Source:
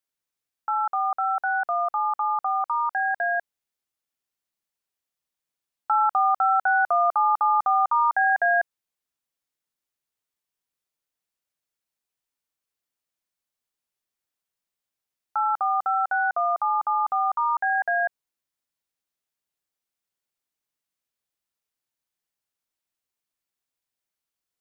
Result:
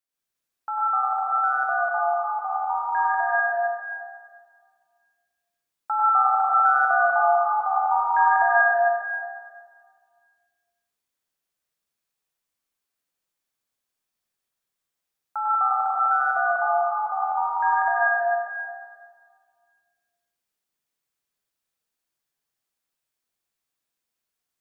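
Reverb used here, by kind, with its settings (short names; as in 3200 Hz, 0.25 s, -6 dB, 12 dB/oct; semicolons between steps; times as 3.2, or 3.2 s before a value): plate-style reverb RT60 1.9 s, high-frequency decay 0.85×, pre-delay 85 ms, DRR -7 dB; gain -4 dB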